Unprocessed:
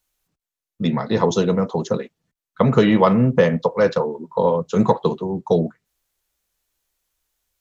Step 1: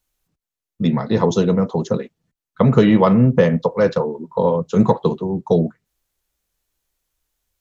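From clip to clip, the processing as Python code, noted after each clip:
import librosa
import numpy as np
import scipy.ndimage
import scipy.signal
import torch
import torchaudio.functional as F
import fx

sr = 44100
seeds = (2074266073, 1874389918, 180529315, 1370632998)

y = fx.low_shelf(x, sr, hz=370.0, db=6.0)
y = y * librosa.db_to_amplitude(-1.5)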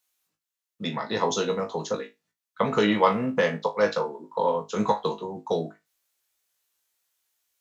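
y = fx.highpass(x, sr, hz=1200.0, slope=6)
y = fx.room_flutter(y, sr, wall_m=3.3, rt60_s=0.2)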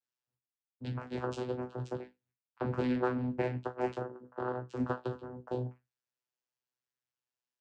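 y = fx.vocoder(x, sr, bands=8, carrier='saw', carrier_hz=125.0)
y = fx.chorus_voices(y, sr, voices=4, hz=0.45, base_ms=12, depth_ms=3.5, mix_pct=25)
y = y * librosa.db_to_amplitude(-7.0)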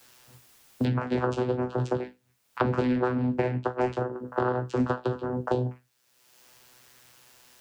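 y = fx.band_squash(x, sr, depth_pct=100)
y = y * librosa.db_to_amplitude(8.0)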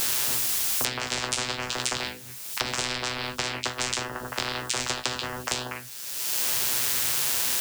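y = fx.high_shelf(x, sr, hz=2800.0, db=11.0)
y = fx.spectral_comp(y, sr, ratio=10.0)
y = y * librosa.db_to_amplitude(1.5)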